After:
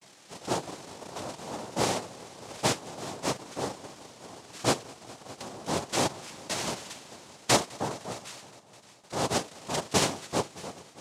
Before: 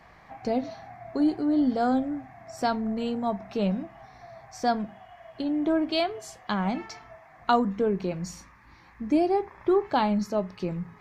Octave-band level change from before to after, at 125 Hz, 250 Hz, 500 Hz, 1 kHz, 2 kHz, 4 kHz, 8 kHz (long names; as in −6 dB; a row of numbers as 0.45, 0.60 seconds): −1.0, −11.0, −5.0, −4.0, +1.5, +5.5, +15.5 decibels